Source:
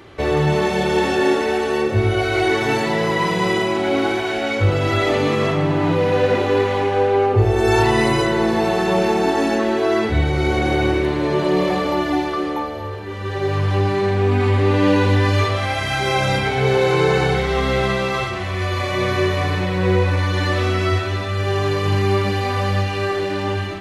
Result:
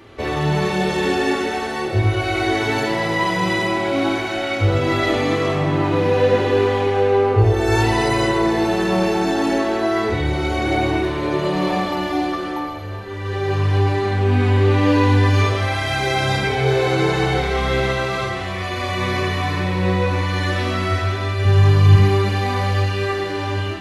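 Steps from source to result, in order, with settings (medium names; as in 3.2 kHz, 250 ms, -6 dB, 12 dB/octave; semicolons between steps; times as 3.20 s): 21.45–21.96 s: resonant low shelf 240 Hz +8.5 dB, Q 1.5; reverberation, pre-delay 3 ms, DRR 0.5 dB; trim -3 dB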